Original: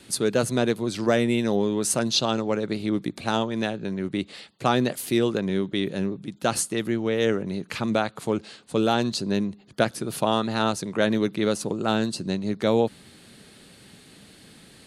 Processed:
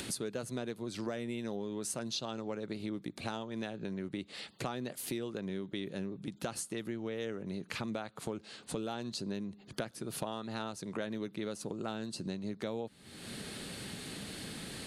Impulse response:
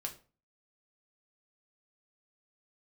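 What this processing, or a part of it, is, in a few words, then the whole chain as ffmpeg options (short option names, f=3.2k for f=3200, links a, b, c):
upward and downward compression: -af "acompressor=mode=upward:threshold=-27dB:ratio=2.5,acompressor=threshold=-30dB:ratio=6,volume=-5dB"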